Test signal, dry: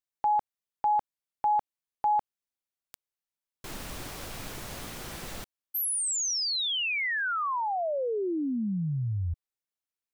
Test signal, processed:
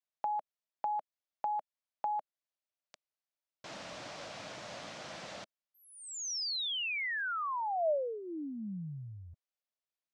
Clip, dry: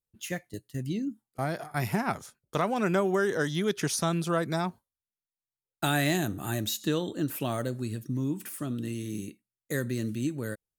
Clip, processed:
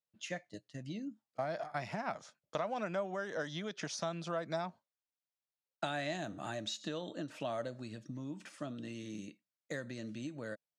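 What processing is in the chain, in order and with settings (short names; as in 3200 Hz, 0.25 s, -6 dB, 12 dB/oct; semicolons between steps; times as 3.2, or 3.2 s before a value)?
compressor, threshold -30 dBFS; speaker cabinet 190–6300 Hz, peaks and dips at 250 Hz -4 dB, 390 Hz -9 dB, 620 Hz +8 dB; gain -3.5 dB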